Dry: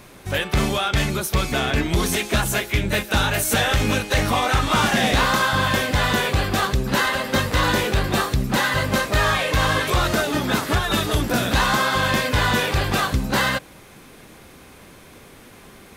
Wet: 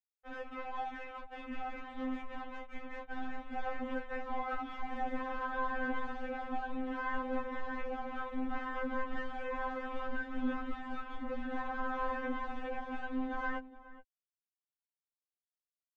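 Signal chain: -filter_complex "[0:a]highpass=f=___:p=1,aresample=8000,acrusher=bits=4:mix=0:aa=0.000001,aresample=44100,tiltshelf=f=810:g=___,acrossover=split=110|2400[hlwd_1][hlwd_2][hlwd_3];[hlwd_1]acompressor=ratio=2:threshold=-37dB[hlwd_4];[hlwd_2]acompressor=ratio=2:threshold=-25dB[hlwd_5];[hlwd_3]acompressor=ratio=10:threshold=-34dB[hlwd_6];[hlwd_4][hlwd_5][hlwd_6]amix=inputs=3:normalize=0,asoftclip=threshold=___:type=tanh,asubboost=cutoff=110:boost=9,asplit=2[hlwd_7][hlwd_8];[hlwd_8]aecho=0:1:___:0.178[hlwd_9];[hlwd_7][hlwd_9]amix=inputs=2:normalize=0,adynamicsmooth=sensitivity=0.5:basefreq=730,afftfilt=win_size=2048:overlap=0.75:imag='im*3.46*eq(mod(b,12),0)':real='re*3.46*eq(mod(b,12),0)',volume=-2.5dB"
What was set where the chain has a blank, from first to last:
66, -5.5, -25dB, 420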